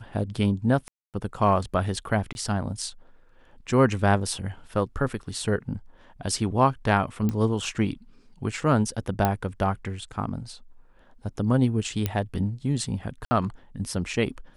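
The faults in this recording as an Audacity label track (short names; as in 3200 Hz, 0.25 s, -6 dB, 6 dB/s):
0.880000	1.140000	gap 0.258 s
2.330000	2.350000	gap 21 ms
7.290000	7.290000	pop -15 dBFS
9.250000	9.250000	pop -9 dBFS
12.060000	12.060000	pop -11 dBFS
13.250000	13.310000	gap 60 ms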